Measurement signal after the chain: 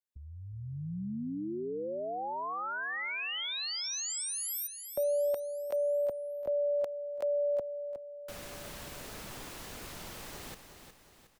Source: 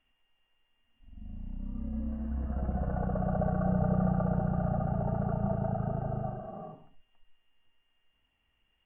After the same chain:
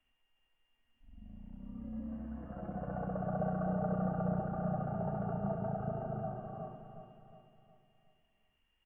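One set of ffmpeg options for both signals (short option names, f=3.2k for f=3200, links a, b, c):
-filter_complex "[0:a]acrossover=split=130|550[a][b][c];[a]acompressor=threshold=-46dB:ratio=6[d];[d][b][c]amix=inputs=3:normalize=0,aecho=1:1:363|726|1089|1452|1815:0.355|0.163|0.0751|0.0345|0.0159,volume=-4dB"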